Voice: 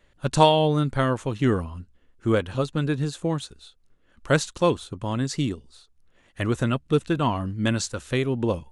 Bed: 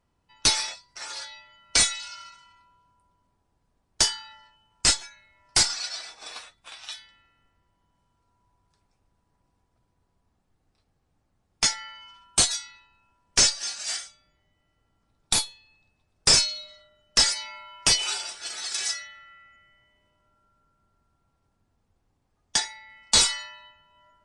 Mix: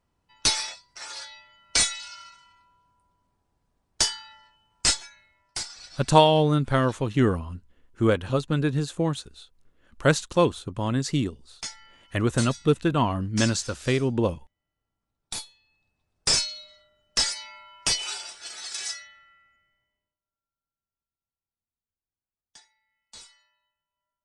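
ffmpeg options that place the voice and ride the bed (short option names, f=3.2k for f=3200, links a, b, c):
-filter_complex "[0:a]adelay=5750,volume=0.5dB[a];[1:a]volume=7.5dB,afade=t=out:st=5.21:d=0.39:silence=0.266073,afade=t=in:st=15.19:d=1.16:silence=0.354813,afade=t=out:st=18.89:d=1.3:silence=0.0630957[b];[a][b]amix=inputs=2:normalize=0"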